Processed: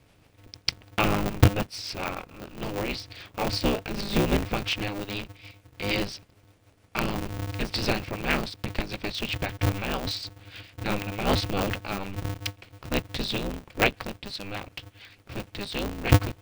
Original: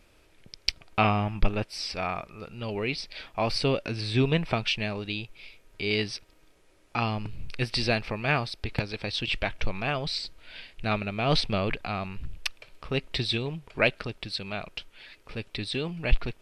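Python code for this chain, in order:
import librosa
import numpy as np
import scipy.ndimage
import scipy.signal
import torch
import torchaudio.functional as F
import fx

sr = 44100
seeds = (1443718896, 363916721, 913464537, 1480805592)

y = fx.octave_divider(x, sr, octaves=1, level_db=-5.0)
y = fx.rotary(y, sr, hz=6.7)
y = y * np.sign(np.sin(2.0 * np.pi * 100.0 * np.arange(len(y)) / sr))
y = y * librosa.db_to_amplitude(1.5)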